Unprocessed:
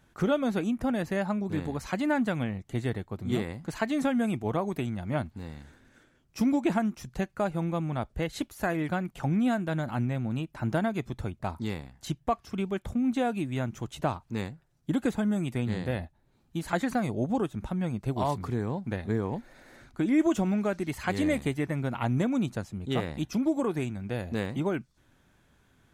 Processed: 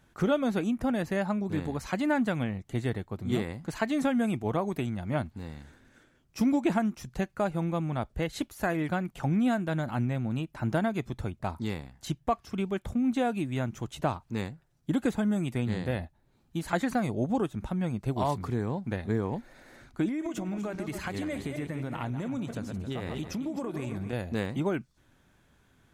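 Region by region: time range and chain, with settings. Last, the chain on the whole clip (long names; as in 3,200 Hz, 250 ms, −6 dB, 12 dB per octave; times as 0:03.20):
0:20.08–0:24.13: feedback delay that plays each chunk backwards 135 ms, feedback 44%, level −9.5 dB + downward compressor 12 to 1, threshold −29 dBFS
whole clip: no processing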